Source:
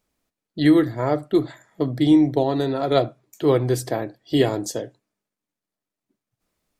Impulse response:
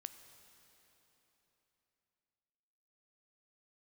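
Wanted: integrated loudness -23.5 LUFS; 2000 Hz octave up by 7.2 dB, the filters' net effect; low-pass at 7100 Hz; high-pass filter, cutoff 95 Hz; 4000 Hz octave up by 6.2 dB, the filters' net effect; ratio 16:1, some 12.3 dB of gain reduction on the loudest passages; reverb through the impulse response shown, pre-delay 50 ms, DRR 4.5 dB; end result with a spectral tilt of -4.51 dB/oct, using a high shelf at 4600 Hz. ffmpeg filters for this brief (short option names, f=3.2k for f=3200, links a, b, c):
-filter_complex "[0:a]highpass=95,lowpass=7.1k,equalizer=f=2k:t=o:g=7.5,equalizer=f=4k:t=o:g=7.5,highshelf=f=4.6k:g=-5,acompressor=threshold=-23dB:ratio=16,asplit=2[a][b];[1:a]atrim=start_sample=2205,adelay=50[c];[b][c]afir=irnorm=-1:irlink=0,volume=0dB[d];[a][d]amix=inputs=2:normalize=0,volume=5dB"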